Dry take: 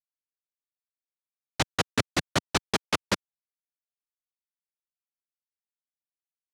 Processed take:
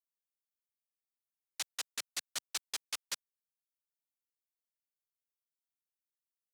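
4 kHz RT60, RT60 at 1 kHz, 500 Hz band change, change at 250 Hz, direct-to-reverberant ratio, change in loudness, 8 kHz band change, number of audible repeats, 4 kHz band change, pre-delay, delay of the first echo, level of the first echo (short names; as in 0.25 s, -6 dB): none, none, -26.5 dB, -32.5 dB, none, -11.0 dB, -4.5 dB, none, -9.0 dB, none, none, none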